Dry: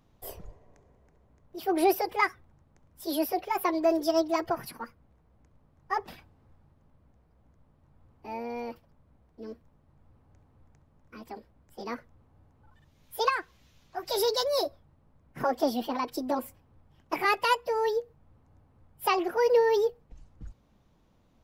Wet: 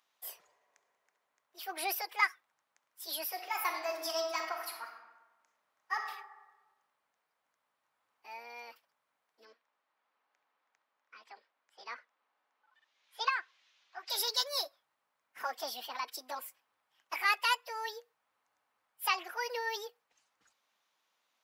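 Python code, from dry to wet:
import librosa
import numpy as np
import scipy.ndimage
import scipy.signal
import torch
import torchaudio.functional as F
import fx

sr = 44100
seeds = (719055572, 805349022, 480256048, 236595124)

y = fx.reverb_throw(x, sr, start_s=3.28, length_s=2.78, rt60_s=1.2, drr_db=3.0)
y = fx.bandpass_edges(y, sr, low_hz=240.0, high_hz=4500.0, at=(9.45, 14.1))
y = scipy.signal.sosfilt(scipy.signal.butter(2, 1400.0, 'highpass', fs=sr, output='sos'), y)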